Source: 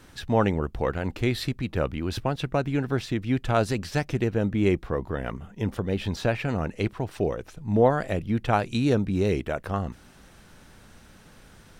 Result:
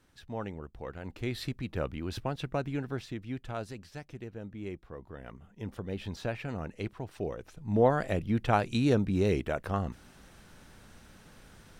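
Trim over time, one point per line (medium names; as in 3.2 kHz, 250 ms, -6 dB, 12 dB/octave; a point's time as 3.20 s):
0.80 s -15.5 dB
1.46 s -7 dB
2.64 s -7 dB
3.94 s -17.5 dB
4.86 s -17.5 dB
5.89 s -9.5 dB
7.19 s -9.5 dB
7.99 s -3 dB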